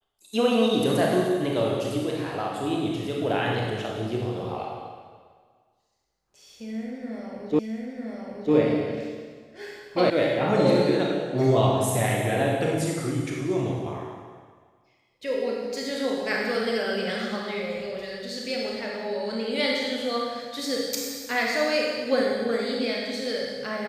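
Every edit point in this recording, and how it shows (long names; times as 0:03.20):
0:07.59: the same again, the last 0.95 s
0:10.10: cut off before it has died away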